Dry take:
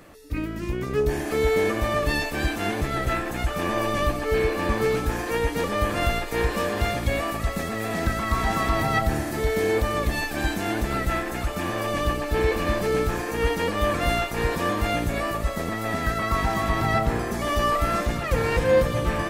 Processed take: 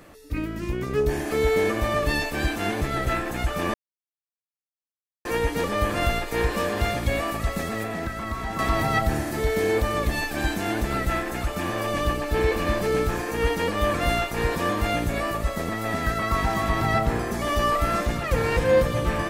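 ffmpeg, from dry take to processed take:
-filter_complex "[0:a]asettb=1/sr,asplit=3[s0][s1][s2];[s0]atrim=end=7.834[s3];[s1]atrim=start=7.83:end=8.59,asetpts=PTS-STARTPTS,afade=t=in:d=0.004:c=qsin,afade=t=out:st=0.756:d=0.004:c=qsin,acrossover=split=790|2800[s4][s5][s6];[s4]acompressor=threshold=0.0355:ratio=4[s7];[s5]acompressor=threshold=0.02:ratio=4[s8];[s6]acompressor=threshold=0.00398:ratio=4[s9];[s7][s8][s9]amix=inputs=3:normalize=0[s10];[s2]atrim=start=8.586[s11];[s3][s10]acrossfade=d=0.004:c1=hsin:c2=qsin[s12];[s12][s11]acrossfade=d=0.004:c1=qsin:c2=hsin,asplit=3[s13][s14][s15];[s13]atrim=end=3.74,asetpts=PTS-STARTPTS,afade=t=out:st=3.736:d=0.004:c=hsin[s16];[s14]atrim=start=3.74:end=5.25,asetpts=PTS-STARTPTS,volume=0[s17];[s15]atrim=start=5.25,asetpts=PTS-STARTPTS,afade=t=in:d=0.004:c=hsin[s18];[s16][s17][s18]concat=n=3:v=0:a=1"

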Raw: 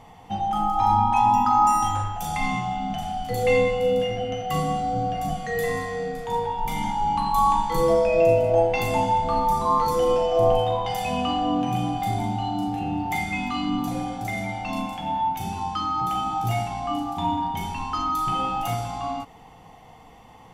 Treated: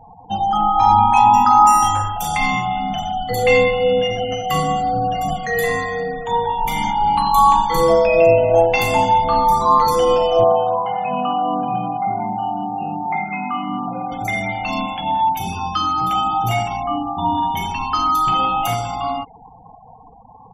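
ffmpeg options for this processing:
-filter_complex "[0:a]asettb=1/sr,asplit=3[s0][s1][s2];[s0]atrim=end=10.444[s3];[s1]atrim=start=10.44:end=14.12,asetpts=PTS-STARTPTS,afade=t=in:d=0.004:c=qsin,afade=t=out:st=3.676:d=0.004:c=qsin,highpass=f=150:w=0.5412,highpass=f=150:w=1.3066,equalizer=f=290:t=q:w=4:g=-7,equalizer=f=440:t=q:w=4:g=-4,equalizer=f=1900:t=q:w=4:g=-8,lowpass=f=2100:w=0.5412,lowpass=f=2100:w=1.3066[s4];[s2]atrim=start=14.116[s5];[s3][s4]acrossfade=d=0.004:c1=hsin:c2=qsin[s6];[s6][s5]acrossfade=d=0.004:c1=qsin:c2=hsin,asettb=1/sr,asplit=3[s7][s8][s9];[s7]atrim=end=15.454[s10];[s8]atrim=start=15.45:end=16.13,asetpts=PTS-STARTPTS,afade=t=in:d=0.004:c=qsin,afade=t=out:st=0.676:d=0.004:c=qsin,asplit=2[s11][s12];[s12]adelay=22,volume=0.501[s13];[s11][s13]amix=inputs=2:normalize=0,atrim=end_sample=29988[s14];[s9]atrim=start=16.126[s15];[s10][s14]acrossfade=d=0.004:c1=hsin:c2=qsin[s16];[s16][s15]acrossfade=d=0.004:c1=qsin:c2=hsin,asettb=1/sr,asplit=3[s17][s18][s19];[s17]atrim=end=16.834[s20];[s18]atrim=start=16.83:end=17.35,asetpts=PTS-STARTPTS,afade=t=in:d=0.004:c=qsin,afade=t=out:st=0.516:d=0.004:c=qsin,lowpass=f=1400:p=1[s21];[s19]atrim=start=17.346[s22];[s20][s21]acrossfade=d=0.004:c1=hsin:c2=qsin[s23];[s23][s22]acrossfade=d=0.004:c1=qsin:c2=hsin,afftfilt=real='re*gte(hypot(re,im),0.01)':imag='im*gte(hypot(re,im),0.01)':win_size=1024:overlap=0.75,tiltshelf=f=690:g=-3.5,volume=2.11"

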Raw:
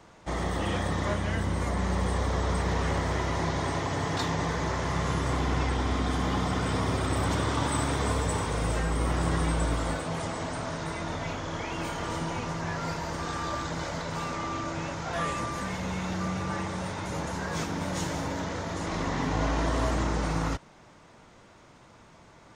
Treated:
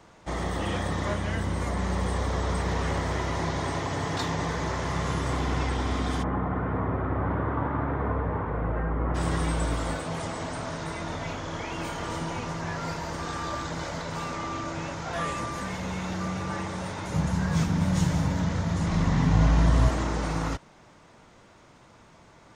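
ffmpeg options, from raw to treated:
-filter_complex "[0:a]asplit=3[s0][s1][s2];[s0]afade=t=out:st=6.22:d=0.02[s3];[s1]lowpass=f=1700:w=0.5412,lowpass=f=1700:w=1.3066,afade=t=in:st=6.22:d=0.02,afade=t=out:st=9.14:d=0.02[s4];[s2]afade=t=in:st=9.14:d=0.02[s5];[s3][s4][s5]amix=inputs=3:normalize=0,asettb=1/sr,asplit=3[s6][s7][s8];[s6]atrim=end=17.144[s9];[s7]atrim=start=17.14:end=19.89,asetpts=PTS-STARTPTS,afade=t=in:d=0.004:c=qsin,afade=t=out:st=2.746:d=0.004:c=qsin,lowshelf=f=240:t=q:w=1.5:g=9[s10];[s8]atrim=start=19.886[s11];[s9][s10]acrossfade=d=0.004:c1=hsin:c2=qsin[s12];[s12][s11]acrossfade=d=0.004:c1=qsin:c2=hsin"

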